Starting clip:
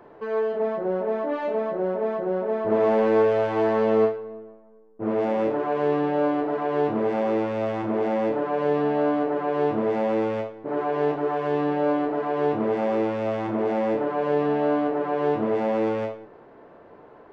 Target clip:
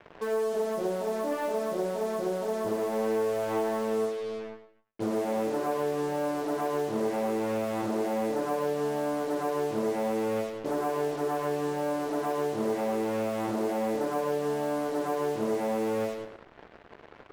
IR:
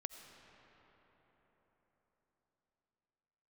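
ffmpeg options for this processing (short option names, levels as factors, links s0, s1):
-filter_complex "[0:a]acompressor=threshold=0.0501:ratio=10,acrusher=bits=6:mix=0:aa=0.5,asplit=2[s0][s1];[1:a]atrim=start_sample=2205,afade=t=out:st=0.23:d=0.01,atrim=end_sample=10584,adelay=104[s2];[s1][s2]afir=irnorm=-1:irlink=0,volume=0.473[s3];[s0][s3]amix=inputs=2:normalize=0"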